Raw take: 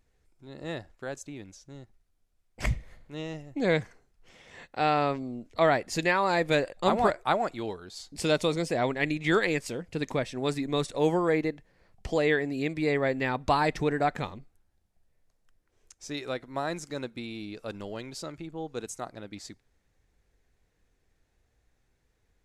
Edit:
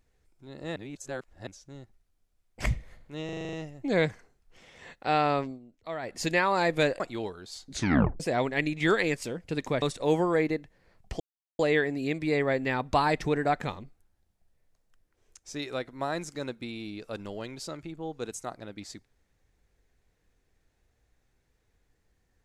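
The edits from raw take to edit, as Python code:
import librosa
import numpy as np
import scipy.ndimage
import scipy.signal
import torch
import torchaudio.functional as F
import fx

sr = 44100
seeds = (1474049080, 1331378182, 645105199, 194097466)

y = fx.edit(x, sr, fx.reverse_span(start_s=0.76, length_s=0.71),
    fx.stutter(start_s=3.25, slice_s=0.04, count=8),
    fx.fade_down_up(start_s=5.13, length_s=0.79, db=-13.5, fade_s=0.18, curve='qsin'),
    fx.cut(start_s=6.72, length_s=0.72),
    fx.tape_stop(start_s=8.11, length_s=0.53),
    fx.cut(start_s=10.26, length_s=0.5),
    fx.insert_silence(at_s=12.14, length_s=0.39), tone=tone)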